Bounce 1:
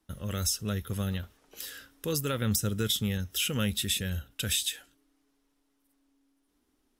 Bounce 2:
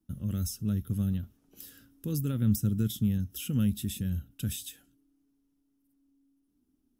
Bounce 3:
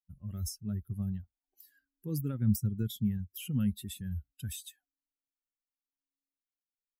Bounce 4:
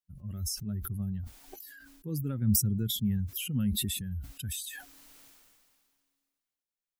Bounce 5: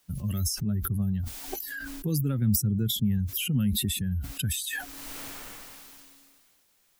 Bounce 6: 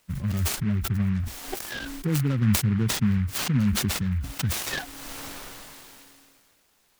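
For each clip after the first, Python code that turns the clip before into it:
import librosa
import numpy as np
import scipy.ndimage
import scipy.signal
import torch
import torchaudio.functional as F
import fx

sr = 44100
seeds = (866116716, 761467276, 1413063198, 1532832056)

y1 = fx.graphic_eq(x, sr, hz=(125, 250, 500, 1000, 2000, 4000, 8000), db=(6, 8, -9, -8, -11, -8, -6))
y1 = y1 * librosa.db_to_amplitude(-2.5)
y2 = fx.bin_expand(y1, sr, power=2.0)
y3 = fx.sustainer(y2, sr, db_per_s=28.0)
y4 = fx.band_squash(y3, sr, depth_pct=70)
y4 = y4 * librosa.db_to_amplitude(5.0)
y5 = fx.noise_mod_delay(y4, sr, seeds[0], noise_hz=1600.0, depth_ms=0.076)
y5 = y5 * librosa.db_to_amplitude(3.0)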